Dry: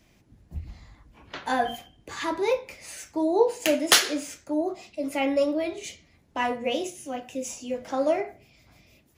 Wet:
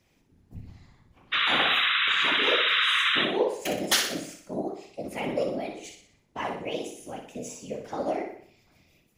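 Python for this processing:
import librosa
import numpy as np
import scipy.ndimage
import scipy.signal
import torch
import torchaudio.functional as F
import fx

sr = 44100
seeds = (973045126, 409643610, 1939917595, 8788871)

y = fx.spec_paint(x, sr, seeds[0], shape='noise', start_s=1.32, length_s=1.93, low_hz=1100.0, high_hz=3900.0, level_db=-19.0)
y = fx.whisperise(y, sr, seeds[1])
y = fx.room_flutter(y, sr, wall_m=10.4, rt60_s=0.54)
y = F.gain(torch.from_numpy(y), -6.0).numpy()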